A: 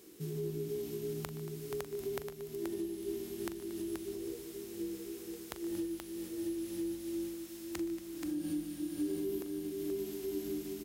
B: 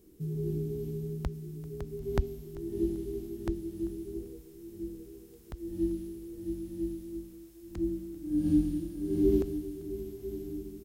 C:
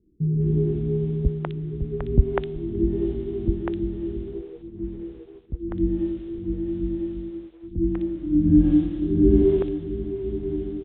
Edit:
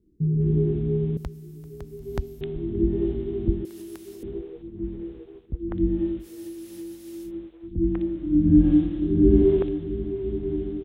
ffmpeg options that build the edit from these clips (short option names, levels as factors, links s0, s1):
-filter_complex "[0:a]asplit=2[s0][s1];[2:a]asplit=4[s2][s3][s4][s5];[s2]atrim=end=1.172[s6];[1:a]atrim=start=1.168:end=2.412[s7];[s3]atrim=start=2.408:end=3.652[s8];[s0]atrim=start=3.648:end=4.232[s9];[s4]atrim=start=4.228:end=6.29[s10];[s1]atrim=start=6.19:end=7.32[s11];[s5]atrim=start=7.22[s12];[s6][s7]acrossfade=d=0.004:c1=hsin:c2=hsin[s13];[s13][s8]acrossfade=d=0.004:c1=hsin:c2=hsin[s14];[s14][s9]acrossfade=d=0.004:c1=hsin:c2=hsin[s15];[s15][s10]acrossfade=d=0.004:c1=hsin:c2=hsin[s16];[s16][s11]acrossfade=d=0.1:c1=tri:c2=tri[s17];[s17][s12]acrossfade=d=0.1:c1=tri:c2=tri"